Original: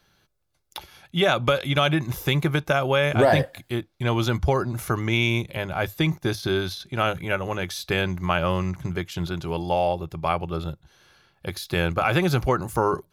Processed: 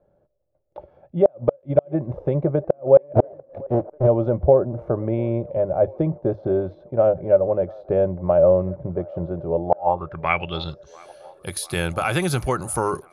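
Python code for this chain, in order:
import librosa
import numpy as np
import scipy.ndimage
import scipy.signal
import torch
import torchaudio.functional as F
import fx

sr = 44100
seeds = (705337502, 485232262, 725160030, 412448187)

p1 = fx.halfwave_hold(x, sr, at=(3.15, 4.06), fade=0.02)
p2 = fx.filter_sweep_lowpass(p1, sr, from_hz=580.0, to_hz=9900.0, start_s=9.63, end_s=11.11, q=6.9)
p3 = fx.gate_flip(p2, sr, shuts_db=-2.0, range_db=-37)
p4 = p3 + fx.echo_wet_bandpass(p3, sr, ms=693, feedback_pct=68, hz=800.0, wet_db=-22.5, dry=0)
y = F.gain(torch.from_numpy(p4), -1.0).numpy()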